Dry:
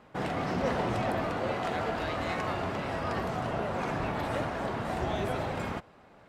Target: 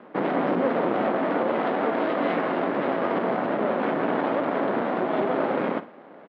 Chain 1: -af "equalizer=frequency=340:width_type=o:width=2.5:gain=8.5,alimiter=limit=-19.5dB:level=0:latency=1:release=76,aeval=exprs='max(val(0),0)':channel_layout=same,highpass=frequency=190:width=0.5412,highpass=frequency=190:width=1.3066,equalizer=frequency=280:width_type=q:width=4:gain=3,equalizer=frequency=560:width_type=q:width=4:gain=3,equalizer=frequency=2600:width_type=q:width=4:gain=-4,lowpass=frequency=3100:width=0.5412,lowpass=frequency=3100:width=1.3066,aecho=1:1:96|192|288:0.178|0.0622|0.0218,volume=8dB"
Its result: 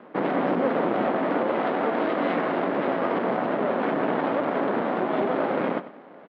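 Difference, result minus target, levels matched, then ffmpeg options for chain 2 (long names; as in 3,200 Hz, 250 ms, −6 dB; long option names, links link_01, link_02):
echo 40 ms late
-af "equalizer=frequency=340:width_type=o:width=2.5:gain=8.5,alimiter=limit=-19.5dB:level=0:latency=1:release=76,aeval=exprs='max(val(0),0)':channel_layout=same,highpass=frequency=190:width=0.5412,highpass=frequency=190:width=1.3066,equalizer=frequency=280:width_type=q:width=4:gain=3,equalizer=frequency=560:width_type=q:width=4:gain=3,equalizer=frequency=2600:width_type=q:width=4:gain=-4,lowpass=frequency=3100:width=0.5412,lowpass=frequency=3100:width=1.3066,aecho=1:1:56|112|168:0.178|0.0622|0.0218,volume=8dB"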